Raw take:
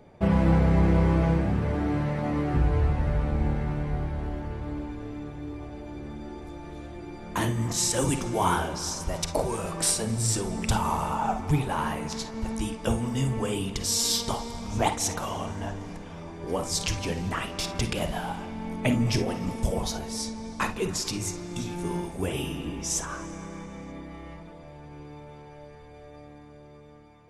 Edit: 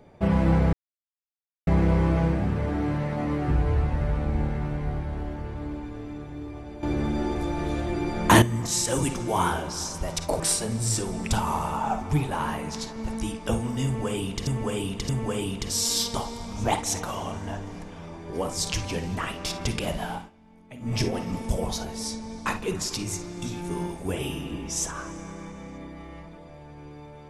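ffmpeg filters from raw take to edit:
ffmpeg -i in.wav -filter_complex "[0:a]asplit=9[link_01][link_02][link_03][link_04][link_05][link_06][link_07][link_08][link_09];[link_01]atrim=end=0.73,asetpts=PTS-STARTPTS,afade=type=out:start_time=0.726:duration=0.004:curve=hsin,apad=pad_dur=0.94[link_10];[link_02]atrim=start=0.73:end=5.892,asetpts=PTS-STARTPTS,afade=type=in:duration=0.004:curve=hsin[link_11];[link_03]atrim=start=5.888:end=7.482,asetpts=PTS-STARTPTS,volume=12dB[link_12];[link_04]atrim=start=7.478:end=9.462[link_13];[link_05]atrim=start=9.778:end=13.852[link_14];[link_06]atrim=start=13.228:end=13.852[link_15];[link_07]atrim=start=13.228:end=18.44,asetpts=PTS-STARTPTS,afade=type=out:start_time=5.042:duration=0.17:silence=0.105925[link_16];[link_08]atrim=start=18.44:end=18.94,asetpts=PTS-STARTPTS,volume=-19.5dB[link_17];[link_09]atrim=start=18.94,asetpts=PTS-STARTPTS,afade=type=in:duration=0.17:silence=0.105925[link_18];[link_10][link_11]concat=n=2:v=0:a=1[link_19];[link_19][link_12]acrossfade=duration=0.004:curve1=hsin:curve2=hsin[link_20];[link_20][link_13]acrossfade=duration=0.004:curve1=hsin:curve2=hsin[link_21];[link_21][link_14]acrossfade=duration=0.004:curve1=hsin:curve2=hsin[link_22];[link_22][link_15]acrossfade=duration=0.004:curve1=hsin:curve2=hsin[link_23];[link_16][link_17][link_18]concat=n=3:v=0:a=1[link_24];[link_23][link_24]acrossfade=duration=0.004:curve1=hsin:curve2=hsin" out.wav

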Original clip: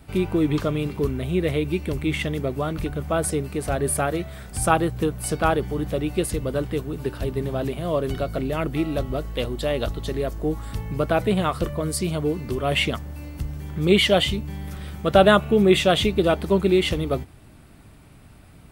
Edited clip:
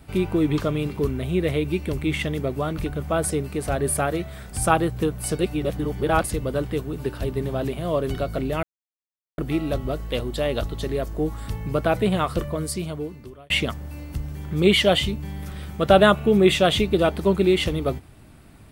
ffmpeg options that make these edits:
ffmpeg -i in.wav -filter_complex "[0:a]asplit=5[link_01][link_02][link_03][link_04][link_05];[link_01]atrim=end=5.392[link_06];[link_02]atrim=start=5.388:end=6.242,asetpts=PTS-STARTPTS,areverse[link_07];[link_03]atrim=start=6.238:end=8.63,asetpts=PTS-STARTPTS,afade=type=out:start_time=2.388:duration=0.004:curve=hsin,apad=pad_dur=0.75[link_08];[link_04]atrim=start=8.63:end=12.75,asetpts=PTS-STARTPTS,afade=type=in:duration=0.004:curve=hsin,afade=type=out:start_time=3.06:duration=1.06[link_09];[link_05]atrim=start=12.75,asetpts=PTS-STARTPTS,afade=type=in:duration=0.004:curve=hsin[link_10];[link_06][link_07]acrossfade=duration=0.004:curve1=hsin:curve2=hsin[link_11];[link_08][link_09][link_10]concat=n=3:v=0:a=1[link_12];[link_11][link_12]acrossfade=duration=0.004:curve1=hsin:curve2=hsin" out.wav

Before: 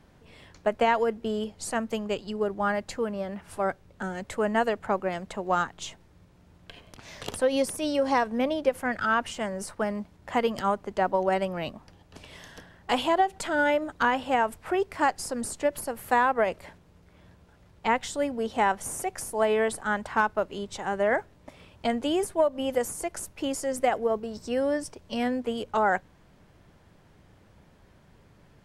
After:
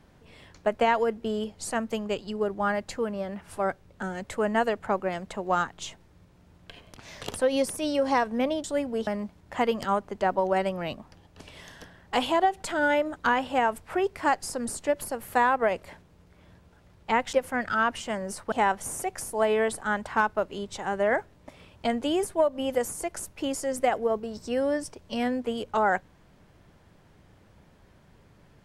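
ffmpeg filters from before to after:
ffmpeg -i in.wav -filter_complex "[0:a]asplit=5[link_01][link_02][link_03][link_04][link_05];[link_01]atrim=end=8.642[link_06];[link_02]atrim=start=18.088:end=18.522[link_07];[link_03]atrim=start=9.828:end=18.092[link_08];[link_04]atrim=start=8.638:end=9.832[link_09];[link_05]atrim=start=18.518[link_10];[link_06][link_07]acrossfade=duration=0.004:curve1=hsin:curve2=hsin[link_11];[link_11][link_08]acrossfade=duration=0.004:curve1=hsin:curve2=hsin[link_12];[link_12][link_09]acrossfade=duration=0.004:curve1=hsin:curve2=hsin[link_13];[link_13][link_10]acrossfade=duration=0.004:curve1=hsin:curve2=hsin" out.wav

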